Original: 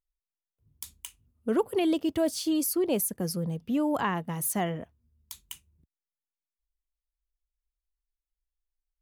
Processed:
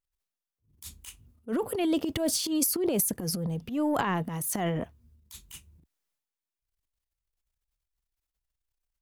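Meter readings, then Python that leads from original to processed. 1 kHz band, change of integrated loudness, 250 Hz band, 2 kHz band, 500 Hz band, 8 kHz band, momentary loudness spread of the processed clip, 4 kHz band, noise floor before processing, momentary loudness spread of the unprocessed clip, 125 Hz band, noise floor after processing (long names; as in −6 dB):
−0.5 dB, 0.0 dB, −1.0 dB, 0.0 dB, −2.0 dB, +3.0 dB, 21 LU, +3.0 dB, below −85 dBFS, 19 LU, +1.5 dB, below −85 dBFS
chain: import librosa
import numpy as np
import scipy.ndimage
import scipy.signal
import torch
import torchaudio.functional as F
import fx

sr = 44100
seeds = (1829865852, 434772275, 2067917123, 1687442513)

y = fx.transient(x, sr, attack_db=-11, sustain_db=10)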